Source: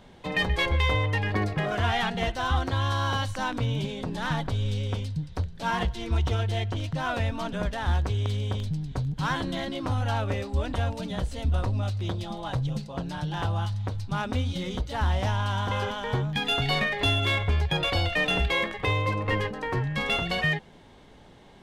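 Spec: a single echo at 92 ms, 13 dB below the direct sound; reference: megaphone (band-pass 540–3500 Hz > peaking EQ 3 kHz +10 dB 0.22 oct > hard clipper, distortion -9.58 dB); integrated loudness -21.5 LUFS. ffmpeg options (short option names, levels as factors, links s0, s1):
-af "highpass=540,lowpass=3500,equalizer=f=3000:t=o:w=0.22:g=10,aecho=1:1:92:0.224,asoftclip=type=hard:threshold=0.0447,volume=3.35"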